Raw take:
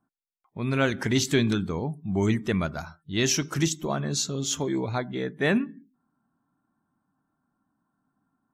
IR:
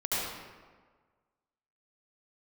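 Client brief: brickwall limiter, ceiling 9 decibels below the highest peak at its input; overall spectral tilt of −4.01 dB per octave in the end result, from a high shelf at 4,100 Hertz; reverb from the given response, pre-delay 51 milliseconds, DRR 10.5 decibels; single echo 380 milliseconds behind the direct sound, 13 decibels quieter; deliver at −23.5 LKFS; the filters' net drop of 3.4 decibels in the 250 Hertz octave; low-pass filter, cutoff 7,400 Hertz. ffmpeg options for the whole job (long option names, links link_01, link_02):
-filter_complex "[0:a]lowpass=7400,equalizer=frequency=250:width_type=o:gain=-4.5,highshelf=frequency=4100:gain=5.5,alimiter=limit=-17.5dB:level=0:latency=1,aecho=1:1:380:0.224,asplit=2[link_01][link_02];[1:a]atrim=start_sample=2205,adelay=51[link_03];[link_02][link_03]afir=irnorm=-1:irlink=0,volume=-19.5dB[link_04];[link_01][link_04]amix=inputs=2:normalize=0,volume=5.5dB"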